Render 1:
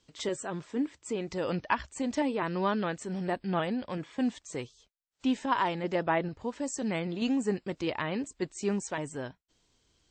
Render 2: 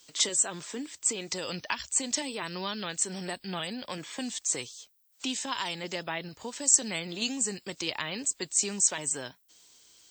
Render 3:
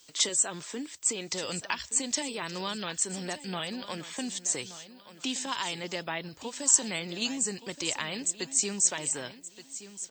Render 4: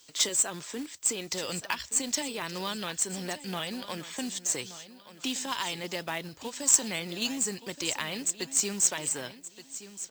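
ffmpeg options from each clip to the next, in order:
ffmpeg -i in.wav -filter_complex "[0:a]acrossover=split=180|3000[link_01][link_02][link_03];[link_02]acompressor=threshold=-39dB:ratio=6[link_04];[link_01][link_04][link_03]amix=inputs=3:normalize=0,aemphasis=mode=production:type=riaa,volume=6dB" out.wav
ffmpeg -i in.wav -af "aecho=1:1:1174|2348|3522:0.188|0.0527|0.0148" out.wav
ffmpeg -i in.wav -af "acrusher=bits=3:mode=log:mix=0:aa=0.000001" out.wav

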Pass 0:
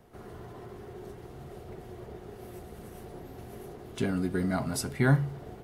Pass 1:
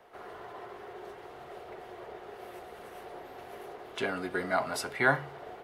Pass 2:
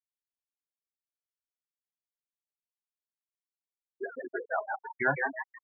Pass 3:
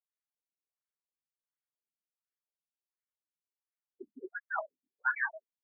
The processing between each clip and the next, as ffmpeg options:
ffmpeg -i in.wav -filter_complex "[0:a]acrossover=split=460 3900:gain=0.0794 1 0.251[link_01][link_02][link_03];[link_01][link_02][link_03]amix=inputs=3:normalize=0,volume=6.5dB" out.wav
ffmpeg -i in.wav -filter_complex "[0:a]asplit=9[link_01][link_02][link_03][link_04][link_05][link_06][link_07][link_08][link_09];[link_02]adelay=160,afreqshift=130,volume=-3.5dB[link_10];[link_03]adelay=320,afreqshift=260,volume=-8.5dB[link_11];[link_04]adelay=480,afreqshift=390,volume=-13.6dB[link_12];[link_05]adelay=640,afreqshift=520,volume=-18.6dB[link_13];[link_06]adelay=800,afreqshift=650,volume=-23.6dB[link_14];[link_07]adelay=960,afreqshift=780,volume=-28.7dB[link_15];[link_08]adelay=1120,afreqshift=910,volume=-33.7dB[link_16];[link_09]adelay=1280,afreqshift=1040,volume=-38.8dB[link_17];[link_01][link_10][link_11][link_12][link_13][link_14][link_15][link_16][link_17]amix=inputs=9:normalize=0,afftfilt=real='re*gte(hypot(re,im),0.126)':imag='im*gte(hypot(re,im),0.126)':win_size=1024:overlap=0.75,volume=-2dB" out.wav
ffmpeg -i in.wav -af "afftfilt=real='re*between(b*sr/1024,210*pow(1700/210,0.5+0.5*sin(2*PI*1.4*pts/sr))/1.41,210*pow(1700/210,0.5+0.5*sin(2*PI*1.4*pts/sr))*1.41)':imag='im*between(b*sr/1024,210*pow(1700/210,0.5+0.5*sin(2*PI*1.4*pts/sr))/1.41,210*pow(1700/210,0.5+0.5*sin(2*PI*1.4*pts/sr))*1.41)':win_size=1024:overlap=0.75" out.wav

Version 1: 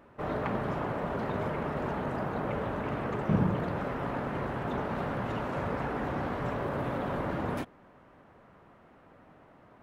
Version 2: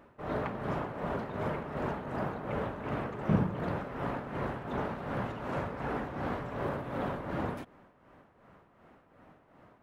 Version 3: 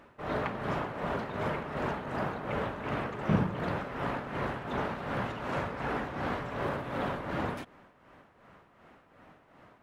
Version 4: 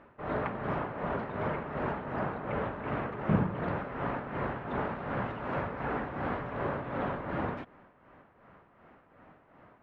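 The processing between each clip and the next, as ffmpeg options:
ffmpeg -i in.wav -af "tremolo=f=2.7:d=0.6" out.wav
ffmpeg -i in.wav -af "equalizer=frequency=4000:width=0.33:gain=6.5" out.wav
ffmpeg -i in.wav -af "lowpass=2200" out.wav

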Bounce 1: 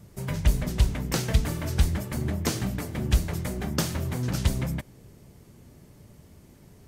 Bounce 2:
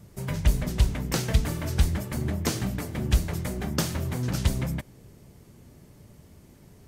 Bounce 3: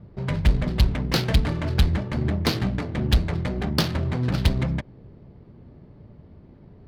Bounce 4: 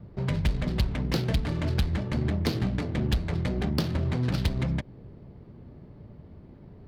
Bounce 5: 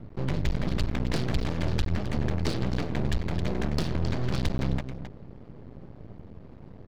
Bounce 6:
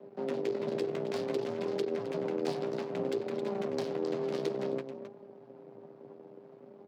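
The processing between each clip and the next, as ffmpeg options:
ffmpeg -i in.wav -af anull out.wav
ffmpeg -i in.wav -af "highshelf=frequency=6400:width_type=q:width=3:gain=-14,adynamicsmooth=sensitivity=5:basefreq=1200,asoftclip=type=hard:threshold=-15.5dB,volume=4.5dB" out.wav
ffmpeg -i in.wav -filter_complex "[0:a]acrossover=split=610|2400[link_01][link_02][link_03];[link_01]acompressor=threshold=-23dB:ratio=4[link_04];[link_02]acompressor=threshold=-41dB:ratio=4[link_05];[link_03]acompressor=threshold=-36dB:ratio=4[link_06];[link_04][link_05][link_06]amix=inputs=3:normalize=0" out.wav
ffmpeg -i in.wav -af "aresample=16000,asoftclip=type=tanh:threshold=-22.5dB,aresample=44100,aecho=1:1:265:0.299,aeval=exprs='max(val(0),0)':channel_layout=same,volume=5.5dB" out.wav
ffmpeg -i in.wav -af "flanger=delay=4.8:depth=7.5:regen=42:speed=0.58:shape=sinusoidal,aeval=exprs='val(0)*sin(2*PI*290*n/s)':channel_layout=same,afreqshift=110,volume=-2dB" out.wav

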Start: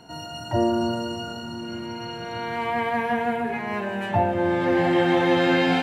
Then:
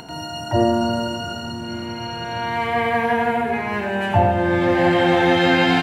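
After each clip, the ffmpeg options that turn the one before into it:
ffmpeg -i in.wav -filter_complex "[0:a]asubboost=boost=3.5:cutoff=91,acompressor=mode=upward:threshold=-38dB:ratio=2.5,asplit=2[link_01][link_02];[link_02]aecho=0:1:87:0.531[link_03];[link_01][link_03]amix=inputs=2:normalize=0,volume=4.5dB" out.wav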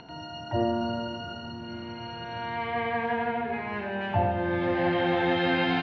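ffmpeg -i in.wav -af "lowpass=frequency=4400:width=0.5412,lowpass=frequency=4400:width=1.3066,volume=-9dB" out.wav

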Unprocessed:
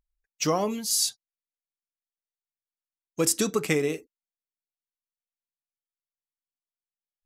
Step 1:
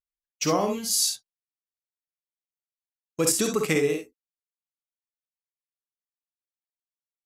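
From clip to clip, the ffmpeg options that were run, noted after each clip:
ffmpeg -i in.wav -filter_complex "[0:a]agate=range=-23dB:threshold=-45dB:ratio=16:detection=peak,asplit=2[link_01][link_02];[link_02]aecho=0:1:50|66:0.473|0.422[link_03];[link_01][link_03]amix=inputs=2:normalize=0" out.wav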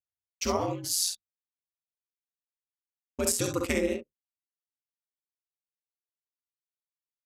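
ffmpeg -i in.wav -af "anlmdn=2.51,aeval=exprs='val(0)*sin(2*PI*90*n/s)':channel_layout=same,volume=-1.5dB" out.wav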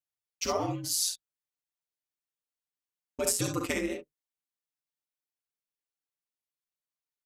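ffmpeg -i in.wav -af "aecho=1:1:6.7:0.77,volume=-3dB" out.wav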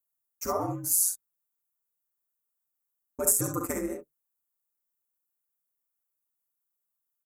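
ffmpeg -i in.wav -af "firequalizer=gain_entry='entry(680,0);entry(1300,3);entry(3100,-25);entry(6900,3);entry(14000,14)':delay=0.05:min_phase=1" out.wav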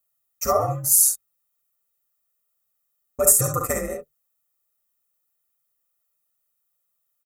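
ffmpeg -i in.wav -af "aecho=1:1:1.6:0.84,volume=6dB" out.wav

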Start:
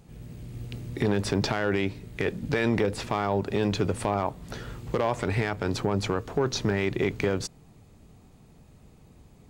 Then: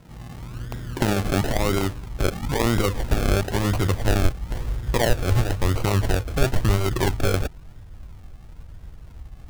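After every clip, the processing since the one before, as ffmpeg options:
ffmpeg -i in.wav -af "bandreject=frequency=430:width=12,acrusher=samples=36:mix=1:aa=0.000001:lfo=1:lforange=21.6:lforate=0.99,asubboost=boost=7:cutoff=71,volume=4.5dB" out.wav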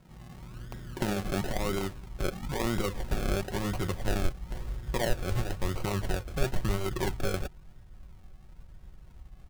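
ffmpeg -i in.wav -af "aecho=1:1:5.4:0.34,volume=-9dB" out.wav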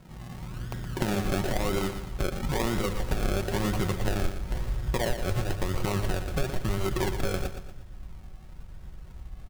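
ffmpeg -i in.wav -af "acompressor=threshold=-29dB:ratio=6,aecho=1:1:118|236|354|472|590:0.355|0.145|0.0596|0.0245|0.01,volume=6dB" out.wav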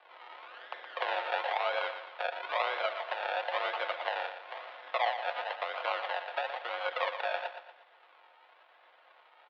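ffmpeg -i in.wav -af "highpass=frequency=460:width_type=q:width=0.5412,highpass=frequency=460:width_type=q:width=1.307,lowpass=frequency=3500:width_type=q:width=0.5176,lowpass=frequency=3500:width_type=q:width=0.7071,lowpass=frequency=3500:width_type=q:width=1.932,afreqshift=150,volume=1.5dB" out.wav

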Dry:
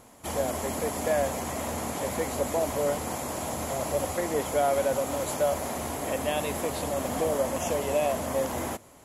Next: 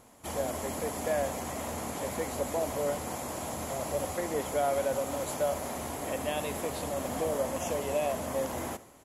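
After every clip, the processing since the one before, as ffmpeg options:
ffmpeg -i in.wav -af "aecho=1:1:71|142|213|284|355:0.119|0.0689|0.04|0.0232|0.0134,volume=-4dB" out.wav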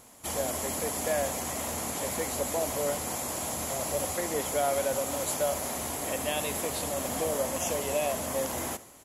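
ffmpeg -i in.wav -af "highshelf=frequency=2600:gain=8.5" out.wav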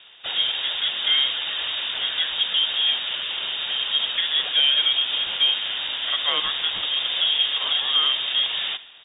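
ffmpeg -i in.wav -af "lowpass=frequency=3200:width_type=q:width=0.5098,lowpass=frequency=3200:width_type=q:width=0.6013,lowpass=frequency=3200:width_type=q:width=0.9,lowpass=frequency=3200:width_type=q:width=2.563,afreqshift=-3800,acontrast=71,volume=2dB" out.wav

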